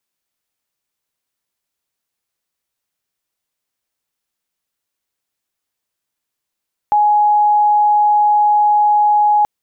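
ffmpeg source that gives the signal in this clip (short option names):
-f lavfi -i "aevalsrc='0.355*sin(2*PI*836*t)':d=2.53:s=44100"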